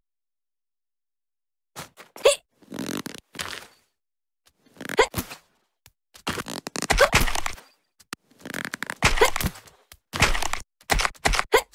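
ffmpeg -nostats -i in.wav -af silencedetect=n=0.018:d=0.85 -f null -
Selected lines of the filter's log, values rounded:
silence_start: 0.00
silence_end: 1.77 | silence_duration: 1.77
silence_start: 3.63
silence_end: 4.81 | silence_duration: 1.18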